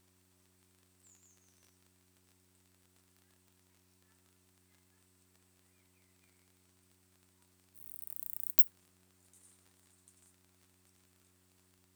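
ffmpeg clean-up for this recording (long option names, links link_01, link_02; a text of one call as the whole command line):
ffmpeg -i in.wav -af "adeclick=threshold=4,bandreject=frequency=92.1:width_type=h:width=4,bandreject=frequency=184.2:width_type=h:width=4,bandreject=frequency=276.3:width_type=h:width=4,bandreject=frequency=368.4:width_type=h:width=4" out.wav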